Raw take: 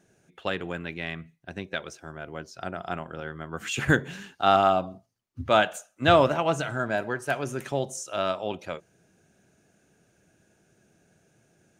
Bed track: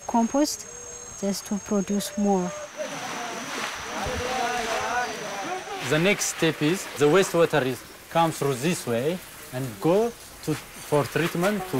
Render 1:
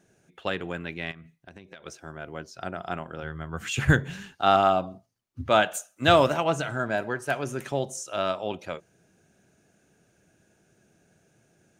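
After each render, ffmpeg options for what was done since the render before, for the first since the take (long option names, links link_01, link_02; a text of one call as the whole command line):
ffmpeg -i in.wav -filter_complex "[0:a]asettb=1/sr,asplit=3[link_01][link_02][link_03];[link_01]atrim=end=1.114[link_04];[link_02]atrim=start=1.11:end=1.86,asetpts=PTS-STARTPTS,afade=type=in:duration=0.004:curve=qsin,afade=type=out:start_time=0.746:duration=0.004:curve=qsin,acompressor=threshold=-41dB:ratio=12:attack=3.2:release=140:knee=1:detection=peak[link_05];[link_03]atrim=start=1.856[link_06];[link_04][link_05]acrossfade=duration=0.004:curve1=hsin:curve2=qsin[link_07];[link_07][link_06]acrossfade=duration=0.004:curve1=qsin:curve2=hsin,asplit=3[link_08][link_09][link_10];[link_08]afade=type=out:start_time=3.22:duration=0.02[link_11];[link_09]asubboost=boost=4:cutoff=140,afade=type=in:start_time=3.22:duration=0.02,afade=type=out:start_time=4.35:duration=0.02[link_12];[link_10]afade=type=in:start_time=4.35:duration=0.02[link_13];[link_11][link_12][link_13]amix=inputs=3:normalize=0,asettb=1/sr,asplit=3[link_14][link_15][link_16];[link_14]atrim=end=5.734[link_17];[link_15]atrim=start=5.73:end=6.44,asetpts=PTS-STARTPTS,afade=type=in:duration=0.004:curve=qsin,afade=type=out:start_time=0.706:duration=0.004:curve=qsin,aemphasis=mode=production:type=cd[link_18];[link_16]atrim=start=6.436[link_19];[link_17][link_18]acrossfade=duration=0.004:curve1=hsin:curve2=qsin[link_20];[link_20][link_19]acrossfade=duration=0.004:curve1=qsin:curve2=hsin" out.wav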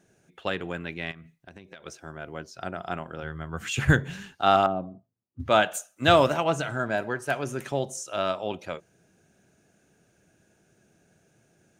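ffmpeg -i in.wav -filter_complex "[0:a]asettb=1/sr,asplit=3[link_01][link_02][link_03];[link_01]atrim=end=4.664[link_04];[link_02]atrim=start=4.66:end=5.4,asetpts=PTS-STARTPTS,afade=type=in:duration=0.004:curve=qsin,afade=type=out:start_time=0.736:duration=0.004:curve=qsin,bandpass=frequency=200:width_type=q:width=0.61[link_05];[link_03]atrim=start=5.396[link_06];[link_04][link_05]acrossfade=duration=0.004:curve1=hsin:curve2=qsin[link_07];[link_07][link_06]acrossfade=duration=0.004:curve1=qsin:curve2=hsin" out.wav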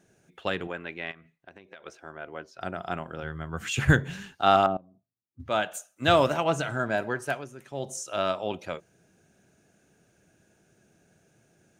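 ffmpeg -i in.wav -filter_complex "[0:a]asettb=1/sr,asplit=3[link_01][link_02][link_03];[link_01]atrim=end=0.674[link_04];[link_02]atrim=start=0.67:end=2.61,asetpts=PTS-STARTPTS,afade=type=in:duration=0.004:curve=qsin,afade=type=out:start_time=1.936:duration=0.004:curve=qsin,bass=frequency=250:gain=-11,treble=frequency=4000:gain=-11[link_05];[link_03]atrim=start=2.606[link_06];[link_04][link_05]acrossfade=duration=0.004:curve1=hsin:curve2=qsin[link_07];[link_07][link_06]acrossfade=duration=0.004:curve1=qsin:curve2=hsin,asplit=4[link_08][link_09][link_10][link_11];[link_08]atrim=end=4.77,asetpts=PTS-STARTPTS,afade=type=out:start_time=4.766:duration=0.004:curve=hsin:silence=0.0891251[link_12];[link_09]atrim=start=4.77:end=7.48,asetpts=PTS-STARTPTS,afade=type=in:duration=1.82:silence=0.0891251,afade=type=out:start_time=2.47:duration=0.24:silence=0.223872[link_13];[link_10]atrim=start=7.48:end=7.7,asetpts=PTS-STARTPTS,volume=-13dB[link_14];[link_11]atrim=start=7.7,asetpts=PTS-STARTPTS,afade=type=in:duration=0.24:silence=0.223872[link_15];[link_12][link_13][link_14][link_15]concat=n=4:v=0:a=1" out.wav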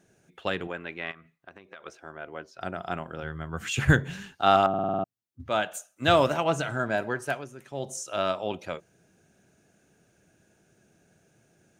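ffmpeg -i in.wav -filter_complex "[0:a]asettb=1/sr,asplit=3[link_01][link_02][link_03];[link_01]atrim=end=0.914[link_04];[link_02]atrim=start=0.91:end=1.87,asetpts=PTS-STARTPTS,afade=type=in:duration=0.004:curve=qsin,afade=type=out:start_time=0.956:duration=0.004:curve=qsin,equalizer=frequency=1200:width_type=o:width=0.47:gain=7.5[link_05];[link_03]atrim=start=1.866[link_06];[link_04][link_05]acrossfade=duration=0.004:curve1=hsin:curve2=qsin[link_07];[link_07][link_06]acrossfade=duration=0.004:curve1=qsin:curve2=hsin,asplit=8[link_08][link_09][link_10][link_11][link_12][link_13][link_14][link_15];[link_08]atrim=end=4.742[link_16];[link_09]atrim=start=4.688:end=4.742[link_17];[link_10]atrim=start=4.688:end=4.742[link_18];[link_11]atrim=start=4.688:end=4.742[link_19];[link_12]atrim=start=4.688:end=4.742[link_20];[link_13]atrim=start=4.688:end=4.742[link_21];[link_14]atrim=start=4.688:end=4.742[link_22];[link_15]atrim=start=5.038[link_23];[link_16][link_17]acrossfade=duration=0.004:curve1=hsin:curve2=hsin[link_24];[link_24][link_18]acrossfade=duration=0.004:curve1=hsin:curve2=hsin[link_25];[link_25][link_19]acrossfade=duration=0.004:curve1=hsin:curve2=hsin[link_26];[link_26][link_20]acrossfade=duration=0.004:curve1=hsin:curve2=hsin[link_27];[link_27][link_21]acrossfade=duration=0.004:curve1=hsin:curve2=hsin[link_28];[link_28][link_22]acrossfade=duration=0.004:curve1=hsin:curve2=hsin[link_29];[link_29][link_23]acrossfade=duration=0.004:curve1=hsin:curve2=hsin" out.wav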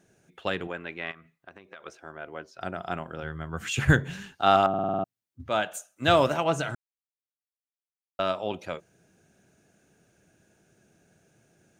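ffmpeg -i in.wav -filter_complex "[0:a]asplit=3[link_01][link_02][link_03];[link_01]atrim=end=6.75,asetpts=PTS-STARTPTS,afade=type=out:start_time=6.746:duration=0.004:curve=hsin[link_04];[link_02]atrim=start=6.75:end=8.19,asetpts=PTS-STARTPTS,volume=0[link_05];[link_03]atrim=start=8.19,asetpts=PTS-STARTPTS,afade=type=in:duration=0.004:curve=hsin[link_06];[link_04][link_05][link_06]concat=n=3:v=0:a=1" out.wav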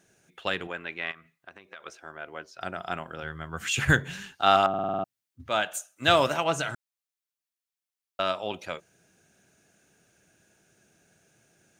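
ffmpeg -i in.wav -af "tiltshelf=frequency=930:gain=-4" out.wav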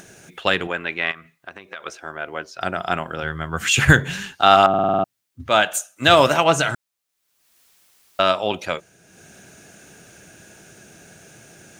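ffmpeg -i in.wav -af "acompressor=mode=upward:threshold=-47dB:ratio=2.5,alimiter=level_in=10dB:limit=-1dB:release=50:level=0:latency=1" out.wav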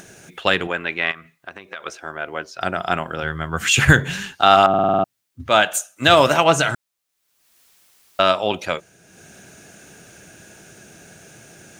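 ffmpeg -i in.wav -af "volume=1.5dB,alimiter=limit=-1dB:level=0:latency=1" out.wav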